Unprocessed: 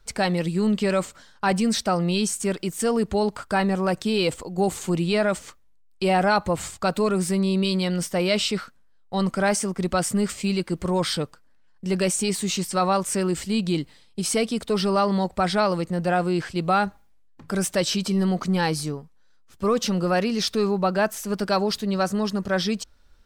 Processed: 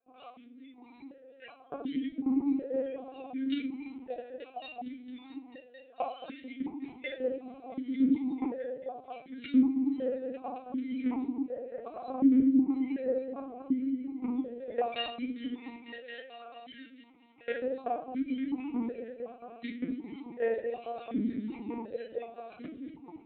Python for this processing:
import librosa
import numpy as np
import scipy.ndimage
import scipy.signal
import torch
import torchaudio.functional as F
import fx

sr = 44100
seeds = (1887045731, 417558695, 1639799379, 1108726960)

y = fx.octave_mirror(x, sr, pivot_hz=1500.0)
y = fx.recorder_agc(y, sr, target_db=-12.5, rise_db_per_s=30.0, max_gain_db=30)
y = y + 0.87 * np.pad(y, (int(4.3 * sr / 1000.0), 0))[:len(y)]
y = fx.level_steps(y, sr, step_db=17)
y = fx.cheby_harmonics(y, sr, harmonics=(4, 6, 7, 8), levels_db=(-28, -9, -24, -17), full_scale_db=-6.5)
y = fx.echo_opening(y, sr, ms=223, hz=400, octaves=1, feedback_pct=70, wet_db=-6)
y = 10.0 ** (-8.5 / 20.0) * np.tanh(y / 10.0 ** (-8.5 / 20.0))
y = fx.room_shoebox(y, sr, seeds[0], volume_m3=440.0, walls='furnished', distance_m=2.1)
y = fx.lpc_vocoder(y, sr, seeds[1], excitation='pitch_kept', order=10)
y = fx.vowel_held(y, sr, hz=2.7)